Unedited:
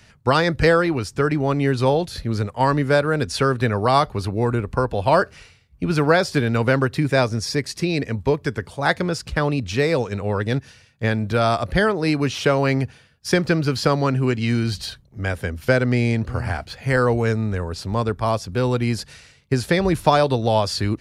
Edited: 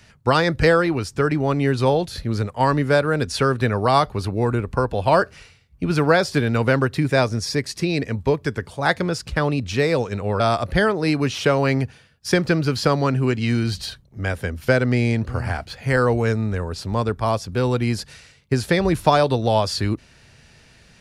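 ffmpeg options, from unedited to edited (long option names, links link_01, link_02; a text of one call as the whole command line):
ffmpeg -i in.wav -filter_complex "[0:a]asplit=2[link_01][link_02];[link_01]atrim=end=10.402[link_03];[link_02]atrim=start=11.398[link_04];[link_03][link_04]acrossfade=duration=0.004:curve1=hsin:curve2=hsin" out.wav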